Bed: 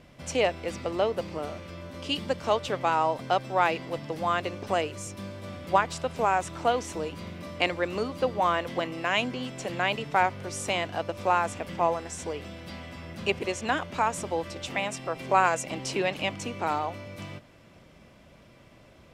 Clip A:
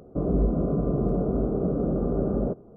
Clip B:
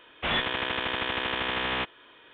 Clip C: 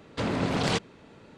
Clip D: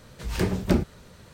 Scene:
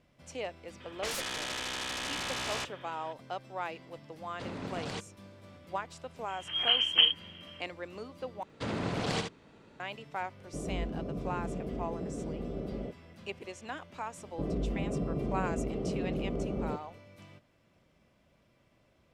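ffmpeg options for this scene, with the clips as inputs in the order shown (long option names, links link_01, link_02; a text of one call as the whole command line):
ffmpeg -i bed.wav -i cue0.wav -i cue1.wav -i cue2.wav -i cue3.wav -filter_complex "[3:a]asplit=2[link_01][link_02];[1:a]asplit=2[link_03][link_04];[0:a]volume=-13.5dB[link_05];[2:a]aeval=exprs='0.168*sin(PI/2*5.01*val(0)/0.168)':channel_layout=same[link_06];[4:a]lowpass=frequency=2800:width_type=q:width=0.5098,lowpass=frequency=2800:width_type=q:width=0.6013,lowpass=frequency=2800:width_type=q:width=0.9,lowpass=frequency=2800:width_type=q:width=2.563,afreqshift=-3300[link_07];[link_02]aecho=1:1:70:0.501[link_08];[link_04]alimiter=limit=-16.5dB:level=0:latency=1:release=71[link_09];[link_05]asplit=2[link_10][link_11];[link_10]atrim=end=8.434[link_12];[link_08]atrim=end=1.37,asetpts=PTS-STARTPTS,volume=-6.5dB[link_13];[link_11]atrim=start=9.796[link_14];[link_06]atrim=end=2.33,asetpts=PTS-STARTPTS,volume=-17.5dB,afade=type=in:duration=0.004:curve=hsin,afade=type=out:start_time=2.326:duration=0.004:curve=hsin,adelay=800[link_15];[link_01]atrim=end=1.37,asetpts=PTS-STARTPTS,volume=-12.5dB,afade=type=in:duration=0.004:curve=hsin,afade=type=out:start_time=1.366:duration=0.004:curve=hsin,adelay=4220[link_16];[link_07]atrim=end=1.33,asetpts=PTS-STARTPTS,volume=-2dB,afade=type=in:duration=0.004:curve=hsin,afade=type=out:start_time=1.326:duration=0.004:curve=hsin,adelay=6280[link_17];[link_03]atrim=end=2.76,asetpts=PTS-STARTPTS,volume=-12.5dB,afade=type=in:duration=0.004:curve=hsin,afade=type=out:start_time=2.756:duration=0.004:curve=hsin,adelay=10380[link_18];[link_09]atrim=end=2.76,asetpts=PTS-STARTPTS,volume=-8dB,afade=type=in:duration=0.004:curve=hsin,afade=type=out:start_time=2.756:duration=0.004:curve=hsin,adelay=14230[link_19];[link_12][link_13]acrossfade=duration=0.004:curve1=hsin:curve2=hsin[link_20];[link_20][link_14]acrossfade=duration=0.004:curve1=hsin:curve2=hsin[link_21];[link_21][link_15][link_16][link_17][link_18][link_19]amix=inputs=6:normalize=0" out.wav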